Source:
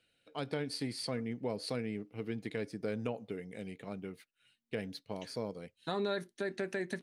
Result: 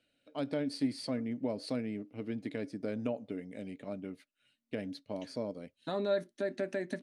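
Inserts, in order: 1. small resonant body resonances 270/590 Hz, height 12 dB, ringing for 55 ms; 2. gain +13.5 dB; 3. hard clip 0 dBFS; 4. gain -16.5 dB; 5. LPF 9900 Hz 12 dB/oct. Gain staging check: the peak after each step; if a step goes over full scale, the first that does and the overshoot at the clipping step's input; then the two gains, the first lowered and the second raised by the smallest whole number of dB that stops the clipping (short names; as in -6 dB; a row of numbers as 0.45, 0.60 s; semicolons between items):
-17.5, -4.0, -4.0, -20.5, -20.5 dBFS; no overload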